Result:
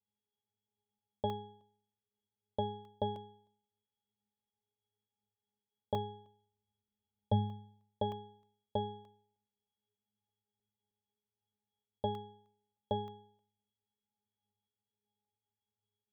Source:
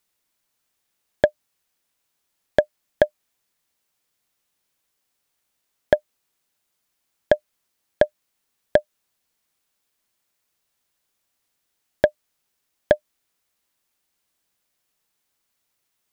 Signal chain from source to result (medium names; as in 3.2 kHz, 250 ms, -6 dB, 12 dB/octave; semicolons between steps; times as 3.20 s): 5.94–7.33 s: octave divider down 2 oct, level +4 dB; elliptic band-stop 890–3100 Hz; dynamic bell 970 Hz, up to +6 dB, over -35 dBFS, Q 1.5; pitch-class resonator G#, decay 0.62 s; crackling interface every 0.31 s, samples 64, zero, from 0.68 s; trim +10.5 dB